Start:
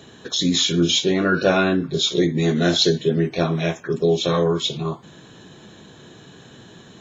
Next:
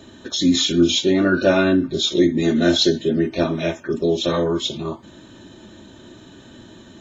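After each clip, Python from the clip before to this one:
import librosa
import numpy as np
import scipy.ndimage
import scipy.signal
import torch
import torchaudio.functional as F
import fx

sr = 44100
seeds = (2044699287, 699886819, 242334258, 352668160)

y = fx.low_shelf(x, sr, hz=330.0, db=7.0)
y = y + 0.67 * np.pad(y, (int(3.3 * sr / 1000.0), 0))[:len(y)]
y = y * librosa.db_to_amplitude(-2.5)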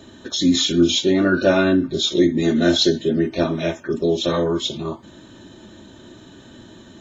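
y = fx.peak_eq(x, sr, hz=2500.0, db=-2.0, octaves=0.27)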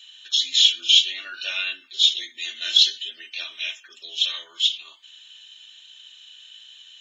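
y = fx.highpass_res(x, sr, hz=2900.0, q=6.6)
y = y * librosa.db_to_amplitude(-3.5)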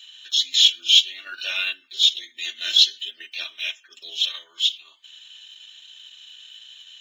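y = fx.block_float(x, sr, bits=7)
y = fx.transient(y, sr, attack_db=-4, sustain_db=-8)
y = y * librosa.db_to_amplitude(2.5)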